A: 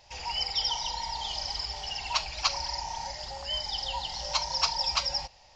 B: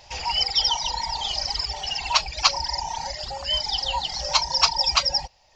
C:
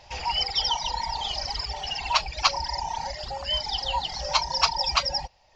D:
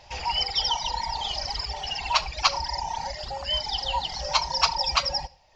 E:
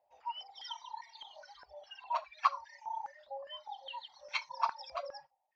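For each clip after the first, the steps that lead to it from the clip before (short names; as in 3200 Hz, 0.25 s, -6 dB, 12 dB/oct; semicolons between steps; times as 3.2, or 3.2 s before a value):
reverb removal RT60 0.97 s; gain +8.5 dB
high shelf 5300 Hz -10.5 dB
reverb RT60 0.30 s, pre-delay 57 ms, DRR 19 dB
spectral noise reduction 16 dB; stepped band-pass 4.9 Hz 650–2200 Hz; gain -1 dB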